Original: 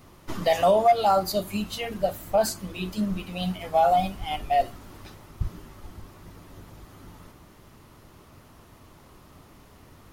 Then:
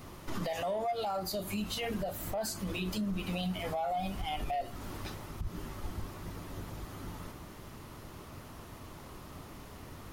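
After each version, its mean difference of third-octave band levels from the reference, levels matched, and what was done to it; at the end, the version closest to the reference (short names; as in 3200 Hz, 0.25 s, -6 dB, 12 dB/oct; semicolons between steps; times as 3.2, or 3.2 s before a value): 10.5 dB: in parallel at -6 dB: soft clip -24.5 dBFS, distortion -7 dB; on the sum: compressor 6:1, threshold -28 dBFS, peak gain reduction 14 dB; limiter -27.5 dBFS, peak gain reduction 9 dB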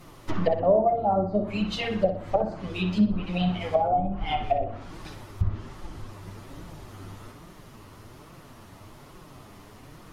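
6.5 dB: flange 1.2 Hz, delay 5.4 ms, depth 5.5 ms, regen +6%; treble ducked by the level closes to 480 Hz, closed at -23.5 dBFS; on a send: analogue delay 61 ms, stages 2048, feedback 42%, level -9 dB; on the sum: gain +6.5 dB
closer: second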